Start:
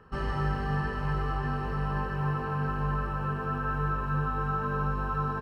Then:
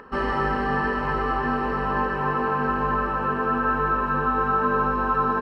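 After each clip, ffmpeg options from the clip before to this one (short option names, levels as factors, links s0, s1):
-af "acompressor=mode=upward:threshold=0.00282:ratio=2.5,equalizer=f=125:t=o:w=1:g=-10,equalizer=f=250:t=o:w=1:g=12,equalizer=f=500:t=o:w=1:g=7,equalizer=f=1000:t=o:w=1:g=8,equalizer=f=2000:t=o:w=1:g=8,equalizer=f=4000:t=o:w=1:g=4"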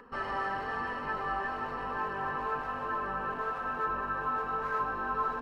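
-filter_complex "[0:a]flanger=delay=4.1:depth=1.1:regen=46:speed=1.1:shape=sinusoidal,acrossover=split=500|890[s0][s1][s2];[s0]aeval=exprs='0.0178*(abs(mod(val(0)/0.0178+3,4)-2)-1)':c=same[s3];[s3][s1][s2]amix=inputs=3:normalize=0,volume=0.596"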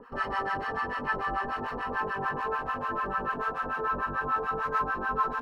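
-filter_complex "[0:a]acrossover=split=780[s0][s1];[s0]aeval=exprs='val(0)*(1-1/2+1/2*cos(2*PI*6.8*n/s))':c=same[s2];[s1]aeval=exprs='val(0)*(1-1/2-1/2*cos(2*PI*6.8*n/s))':c=same[s3];[s2][s3]amix=inputs=2:normalize=0,volume=2.51"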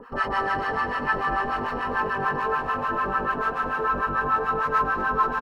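-af "aecho=1:1:233:0.251,volume=1.88"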